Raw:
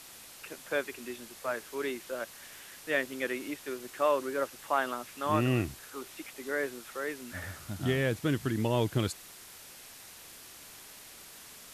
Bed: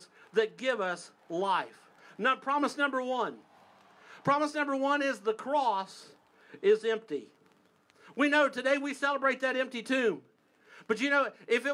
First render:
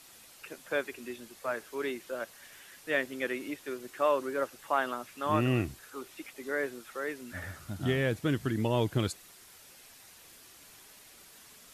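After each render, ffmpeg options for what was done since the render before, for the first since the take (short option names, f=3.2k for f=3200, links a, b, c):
-af "afftdn=nr=6:nf=-51"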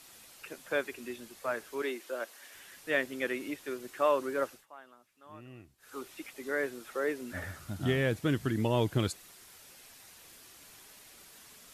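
-filter_complex "[0:a]asettb=1/sr,asplit=3[a][b][c];[a]atrim=end=1.824[d];[b]atrim=start=1.82:end=2.55,asetpts=PTS-STARTPTS,afade=t=in:d=0.004:c=qsin,afade=t=out:st=0.726:d=0.004:c=qsin,highpass=f=260:w=0.5412,highpass=f=260:w=1.3066[e];[c]atrim=start=2.546[f];[d][e]acrossfade=d=0.004:c1=hsin:c2=qsin[g];[g][f]acrossfade=d=0.004:c1=qsin:c2=hsin,asettb=1/sr,asplit=3[h][i][j];[h]atrim=end=6.814[k];[i]atrim=start=6.81:end=7.44,asetpts=PTS-STARTPTS,afade=t=in:d=0.004:c=qsin,afade=t=out:st=0.626:d=0.004:c=qsin,equalizer=f=430:t=o:w=1.8:g=5.5[l];[j]atrim=start=7.436[m];[k][l]acrossfade=d=0.004:c1=hsin:c2=qsin[n];[n][m]acrossfade=d=0.004:c1=qsin:c2=hsin,asplit=3[o][p][q];[o]atrim=end=4.66,asetpts=PTS-STARTPTS,afade=t=out:st=4.5:d=0.16:silence=0.0749894[r];[p]atrim=start=4.66:end=5.78,asetpts=PTS-STARTPTS,volume=-22.5dB[s];[q]atrim=start=5.78,asetpts=PTS-STARTPTS,afade=t=in:d=0.16:silence=0.0749894[t];[r][s][t]concat=n=3:v=0:a=1"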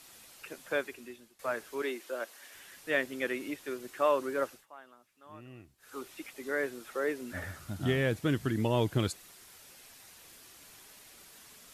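-filter_complex "[0:a]asplit=2[a][b];[a]atrim=end=1.39,asetpts=PTS-STARTPTS,afade=t=out:st=0.73:d=0.66:silence=0.112202[c];[b]atrim=start=1.39,asetpts=PTS-STARTPTS,afade=t=in:d=0.004:c=hsin:silence=0.112202[d];[c][d]concat=n=2:v=0:a=1"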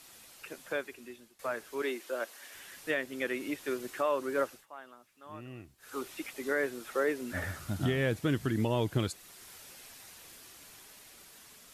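-af "alimiter=limit=-23.5dB:level=0:latency=1:release=434,dynaudnorm=f=990:g=5:m=4dB"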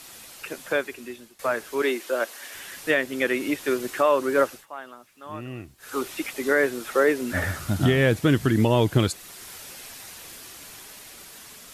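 -af "volume=10dB"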